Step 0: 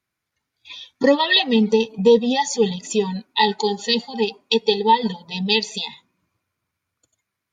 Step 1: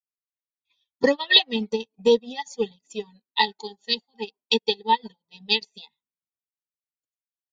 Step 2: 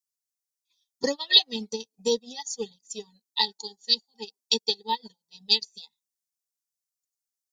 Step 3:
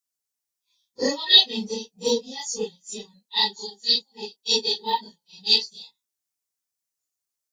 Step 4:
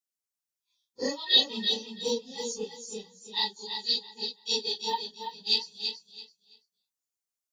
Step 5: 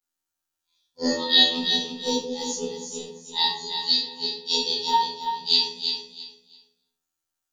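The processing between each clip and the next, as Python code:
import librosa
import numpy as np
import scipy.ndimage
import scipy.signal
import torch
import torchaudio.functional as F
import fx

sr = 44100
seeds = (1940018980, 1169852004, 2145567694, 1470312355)

y1 = fx.hpss(x, sr, part='percussive', gain_db=6)
y1 = fx.upward_expand(y1, sr, threshold_db=-34.0, expansion=2.5)
y1 = F.gain(torch.from_numpy(y1), -2.0).numpy()
y2 = fx.high_shelf_res(y1, sr, hz=3800.0, db=14.0, q=1.5)
y2 = F.gain(torch.from_numpy(y2), -7.5).numpy()
y3 = fx.phase_scramble(y2, sr, seeds[0], window_ms=100)
y3 = F.gain(torch.from_numpy(y3), 3.5).numpy()
y4 = fx.echo_feedback(y3, sr, ms=333, feedback_pct=22, wet_db=-7)
y4 = F.gain(torch.from_numpy(y4), -7.0).numpy()
y5 = fx.robotise(y4, sr, hz=84.0)
y5 = fx.room_shoebox(y5, sr, seeds[1], volume_m3=840.0, walls='furnished', distance_m=7.7)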